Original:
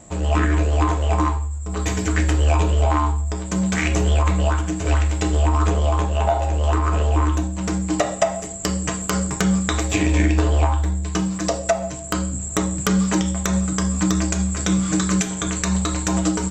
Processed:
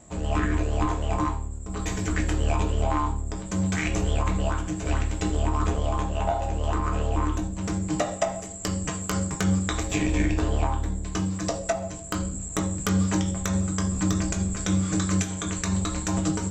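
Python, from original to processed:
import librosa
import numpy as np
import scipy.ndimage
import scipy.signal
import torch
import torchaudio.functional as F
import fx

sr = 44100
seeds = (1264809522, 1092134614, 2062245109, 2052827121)

y = fx.octave_divider(x, sr, octaves=1, level_db=-4.0)
y = fx.doubler(y, sr, ms=20.0, db=-10)
y = F.gain(torch.from_numpy(y), -6.5).numpy()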